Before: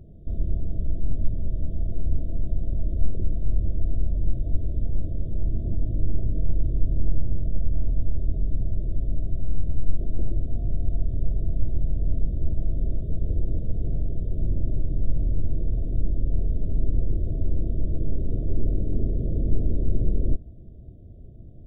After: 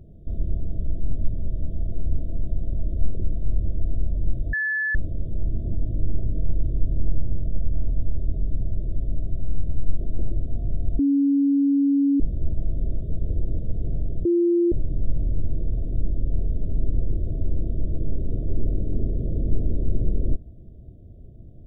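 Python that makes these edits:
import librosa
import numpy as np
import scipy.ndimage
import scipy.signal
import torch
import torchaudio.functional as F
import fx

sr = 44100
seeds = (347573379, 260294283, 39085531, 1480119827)

y = fx.edit(x, sr, fx.bleep(start_s=4.53, length_s=0.42, hz=1730.0, db=-21.5),
    fx.bleep(start_s=10.99, length_s=1.21, hz=280.0, db=-16.0),
    fx.bleep(start_s=14.25, length_s=0.47, hz=345.0, db=-16.0), tone=tone)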